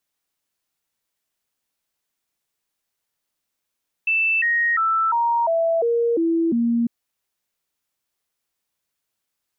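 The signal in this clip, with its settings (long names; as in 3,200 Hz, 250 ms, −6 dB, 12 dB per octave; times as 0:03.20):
stepped sweep 2,650 Hz down, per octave 2, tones 8, 0.35 s, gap 0.00 s −16.5 dBFS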